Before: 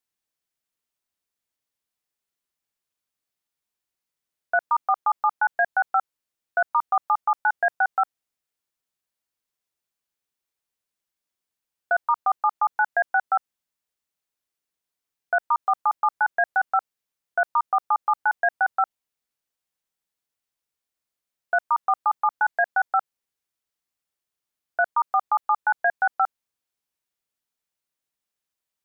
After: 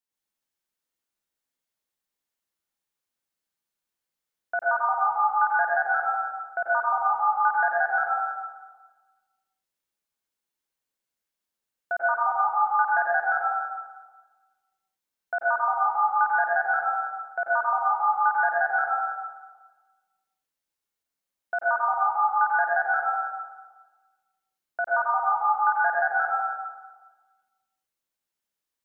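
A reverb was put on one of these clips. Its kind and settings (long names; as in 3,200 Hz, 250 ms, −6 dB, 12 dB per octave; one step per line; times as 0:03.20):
dense smooth reverb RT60 1.3 s, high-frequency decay 0.75×, pre-delay 80 ms, DRR −5.5 dB
level −6.5 dB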